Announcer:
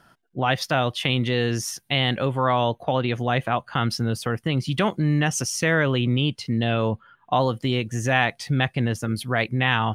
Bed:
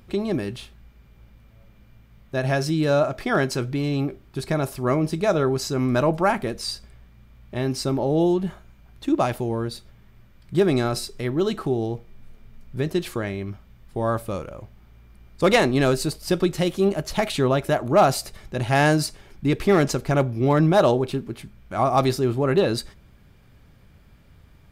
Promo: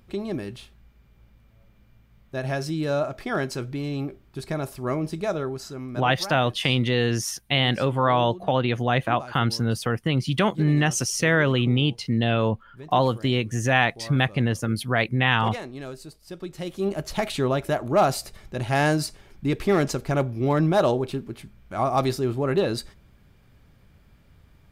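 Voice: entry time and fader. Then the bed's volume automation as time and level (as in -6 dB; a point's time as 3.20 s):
5.60 s, +0.5 dB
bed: 5.22 s -5 dB
6.21 s -17 dB
16.31 s -17 dB
16.98 s -3 dB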